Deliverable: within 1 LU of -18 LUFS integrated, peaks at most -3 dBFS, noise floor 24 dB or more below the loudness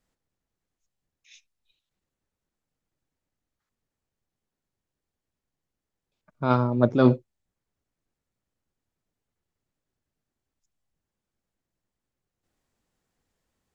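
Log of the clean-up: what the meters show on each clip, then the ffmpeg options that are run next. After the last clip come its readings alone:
loudness -23.0 LUFS; peak level -6.0 dBFS; loudness target -18.0 LUFS
-> -af "volume=1.78,alimiter=limit=0.708:level=0:latency=1"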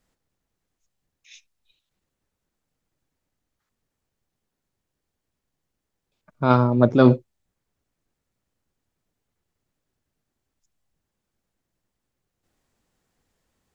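loudness -18.5 LUFS; peak level -3.0 dBFS; noise floor -82 dBFS

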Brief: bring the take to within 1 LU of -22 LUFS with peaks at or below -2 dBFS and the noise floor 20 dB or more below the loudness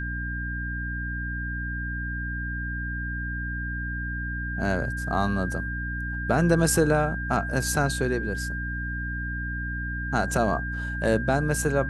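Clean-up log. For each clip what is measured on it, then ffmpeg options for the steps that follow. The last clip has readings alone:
hum 60 Hz; highest harmonic 300 Hz; hum level -30 dBFS; steady tone 1.6 kHz; tone level -32 dBFS; loudness -27.5 LUFS; peak level -7.5 dBFS; loudness target -22.0 LUFS
-> -af "bandreject=f=60:t=h:w=6,bandreject=f=120:t=h:w=6,bandreject=f=180:t=h:w=6,bandreject=f=240:t=h:w=6,bandreject=f=300:t=h:w=6"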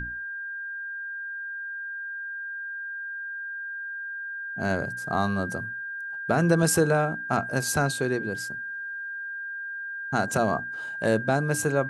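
hum not found; steady tone 1.6 kHz; tone level -32 dBFS
-> -af "bandreject=f=1600:w=30"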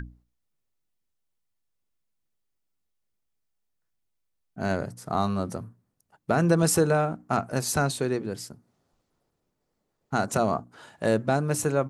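steady tone not found; loudness -26.5 LUFS; peak level -8.5 dBFS; loudness target -22.0 LUFS
-> -af "volume=1.68"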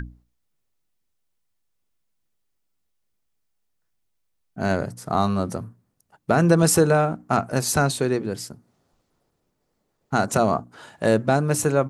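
loudness -22.0 LUFS; peak level -4.0 dBFS; noise floor -74 dBFS

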